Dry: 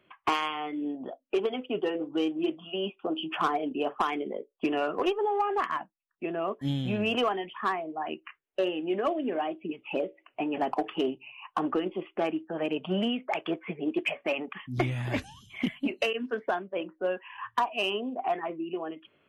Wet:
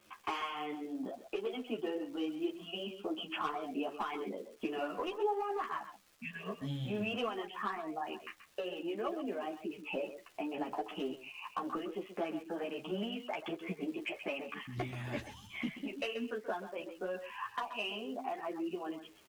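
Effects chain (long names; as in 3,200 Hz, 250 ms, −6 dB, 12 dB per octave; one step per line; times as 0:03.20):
healed spectral selection 0:06.12–0:06.48, 260–1,500 Hz both
downward compressor 2.5 to 1, threshold −38 dBFS, peak gain reduction 11 dB
surface crackle 420 per second −50 dBFS
single-tap delay 131 ms −11.5 dB
string-ensemble chorus
level +2.5 dB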